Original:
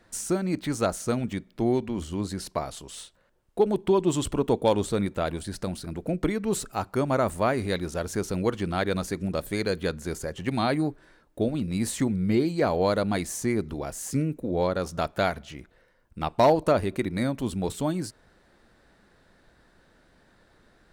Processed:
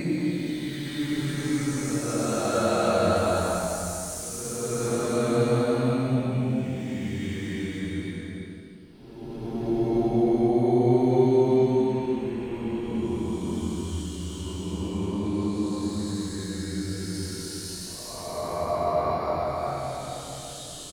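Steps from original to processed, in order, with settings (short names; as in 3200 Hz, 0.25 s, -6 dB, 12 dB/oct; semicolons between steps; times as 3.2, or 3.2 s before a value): early reflections 23 ms -3.5 dB, 73 ms -17.5 dB; Paulstretch 9.3×, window 0.25 s, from 0.54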